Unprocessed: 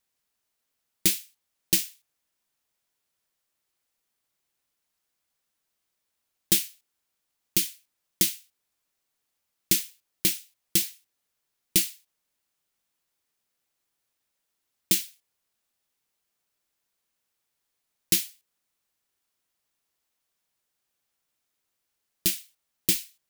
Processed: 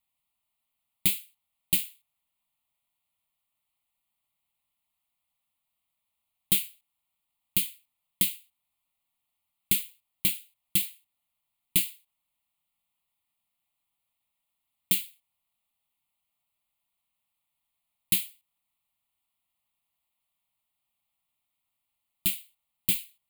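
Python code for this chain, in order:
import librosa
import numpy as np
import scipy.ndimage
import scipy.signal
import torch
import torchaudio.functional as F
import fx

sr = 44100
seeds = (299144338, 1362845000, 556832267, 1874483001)

y = fx.fixed_phaser(x, sr, hz=1600.0, stages=6)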